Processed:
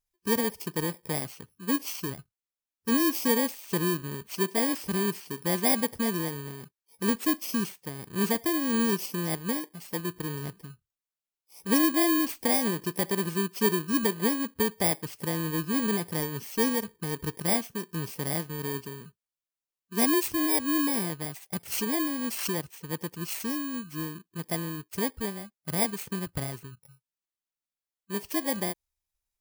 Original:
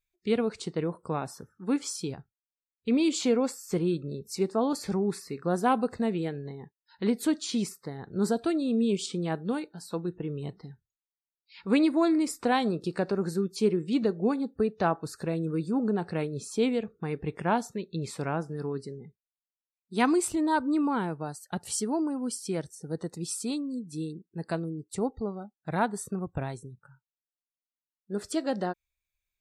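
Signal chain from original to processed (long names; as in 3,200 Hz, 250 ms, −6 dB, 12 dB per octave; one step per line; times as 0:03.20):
samples in bit-reversed order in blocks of 32 samples
0:21.75–0:22.59: background raised ahead of every attack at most 52 dB per second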